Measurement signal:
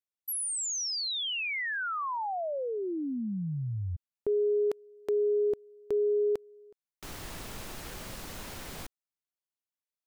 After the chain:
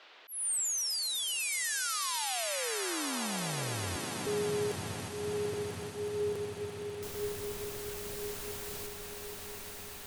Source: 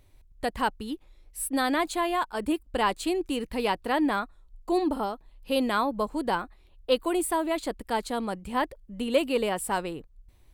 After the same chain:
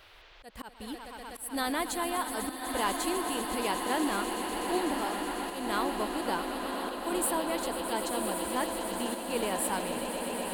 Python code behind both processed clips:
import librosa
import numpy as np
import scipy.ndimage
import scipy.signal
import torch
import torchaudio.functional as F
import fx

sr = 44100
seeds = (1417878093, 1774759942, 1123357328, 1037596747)

y = fx.high_shelf(x, sr, hz=5400.0, db=10.5)
y = fx.echo_swell(y, sr, ms=124, loudest=8, wet_db=-13)
y = fx.dmg_noise_band(y, sr, seeds[0], low_hz=350.0, high_hz=3800.0, level_db=-50.0)
y = fx.auto_swell(y, sr, attack_ms=229.0)
y = fx.echo_diffused(y, sr, ms=1077, feedback_pct=48, wet_db=-7)
y = F.gain(torch.from_numpy(y), -6.5).numpy()